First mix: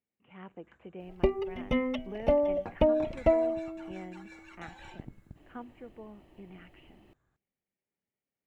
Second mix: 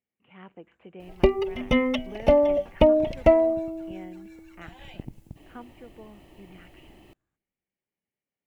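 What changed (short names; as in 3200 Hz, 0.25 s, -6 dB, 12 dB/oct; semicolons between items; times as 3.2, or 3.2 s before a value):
first sound -9.5 dB; second sound +6.5 dB; master: add high shelf 3100 Hz +7.5 dB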